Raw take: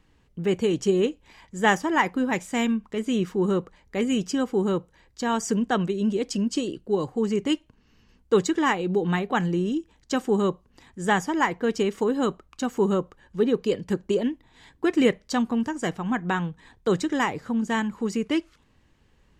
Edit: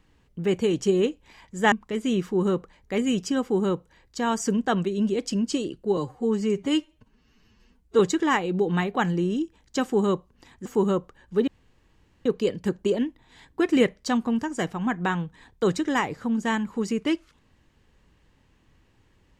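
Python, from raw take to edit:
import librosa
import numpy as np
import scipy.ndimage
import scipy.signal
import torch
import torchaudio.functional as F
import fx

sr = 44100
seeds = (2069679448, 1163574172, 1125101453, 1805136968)

y = fx.edit(x, sr, fx.cut(start_s=1.72, length_s=1.03),
    fx.stretch_span(start_s=7.0, length_s=1.35, factor=1.5),
    fx.cut(start_s=11.01, length_s=1.67),
    fx.insert_room_tone(at_s=13.5, length_s=0.78), tone=tone)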